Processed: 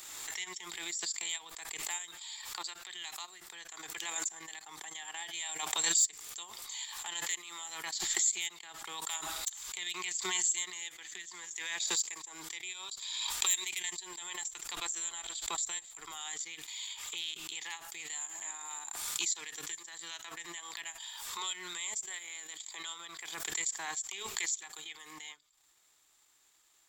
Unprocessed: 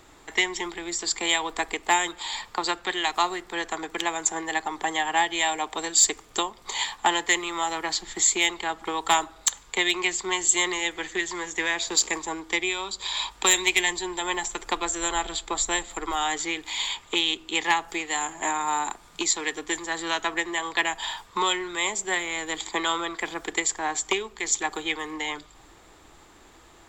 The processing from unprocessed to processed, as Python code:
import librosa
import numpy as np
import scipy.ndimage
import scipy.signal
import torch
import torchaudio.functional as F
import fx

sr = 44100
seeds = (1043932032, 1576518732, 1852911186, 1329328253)

y = fx.octave_divider(x, sr, octaves=1, level_db=-4.0)
y = fx.transient(y, sr, attack_db=-7, sustain_db=-11)
y = F.preemphasis(torch.from_numpy(y), 0.97).numpy()
y = fx.pre_swell(y, sr, db_per_s=29.0)
y = y * librosa.db_to_amplitude(-6.0)